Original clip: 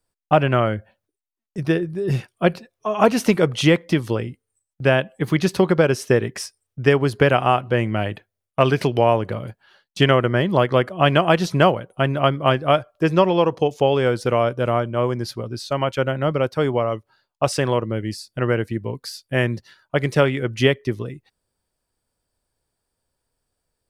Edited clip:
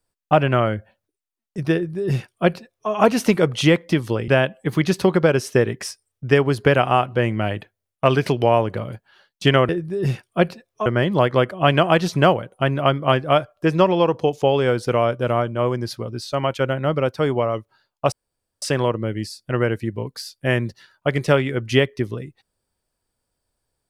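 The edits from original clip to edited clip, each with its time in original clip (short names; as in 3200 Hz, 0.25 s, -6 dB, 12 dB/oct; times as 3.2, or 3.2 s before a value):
1.74–2.91 copy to 10.24
4.28–4.83 cut
17.5 insert room tone 0.50 s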